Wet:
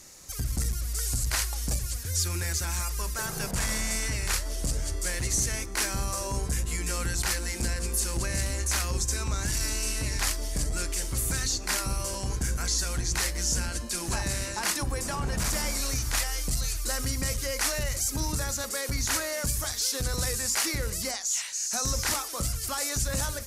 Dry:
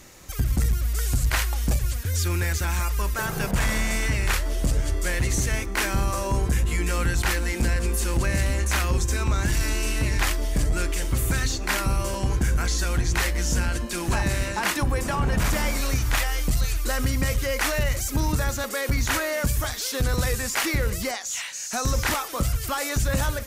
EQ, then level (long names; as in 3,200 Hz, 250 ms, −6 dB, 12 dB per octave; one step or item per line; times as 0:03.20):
flat-topped bell 7,100 Hz +9 dB
mains-hum notches 50/100/150/200/250/300/350 Hz
−6.5 dB